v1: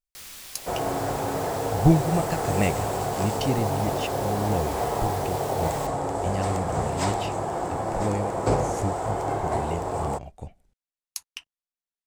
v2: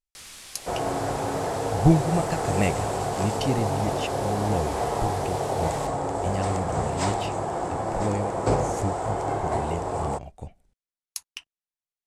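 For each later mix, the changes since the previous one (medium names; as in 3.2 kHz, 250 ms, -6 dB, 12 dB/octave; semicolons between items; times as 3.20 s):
speech: remove low-pass 11 kHz; master: add low-pass 11 kHz 24 dB/octave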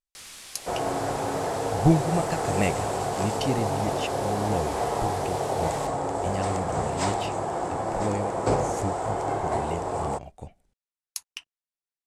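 master: add bass shelf 130 Hz -5 dB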